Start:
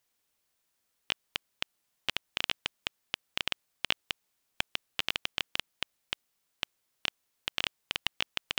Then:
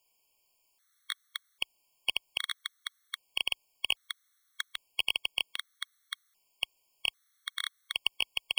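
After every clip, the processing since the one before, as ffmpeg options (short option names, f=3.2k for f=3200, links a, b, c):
-af "asoftclip=type=tanh:threshold=-18dB,equalizer=f=150:w=0.43:g=-12.5,afftfilt=real='re*gt(sin(2*PI*0.63*pts/sr)*(1-2*mod(floor(b*sr/1024/1100),2)),0)':imag='im*gt(sin(2*PI*0.63*pts/sr)*(1-2*mod(floor(b*sr/1024/1100),2)),0)':win_size=1024:overlap=0.75,volume=8.5dB"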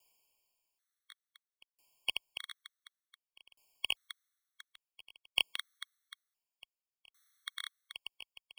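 -af "aeval=exprs='val(0)*pow(10,-35*if(lt(mod(0.56*n/s,1),2*abs(0.56)/1000),1-mod(0.56*n/s,1)/(2*abs(0.56)/1000),(mod(0.56*n/s,1)-2*abs(0.56)/1000)/(1-2*abs(0.56)/1000))/20)':c=same,volume=2dB"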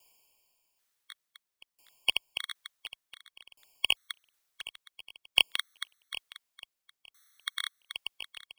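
-af "aecho=1:1:765:0.15,volume=7.5dB"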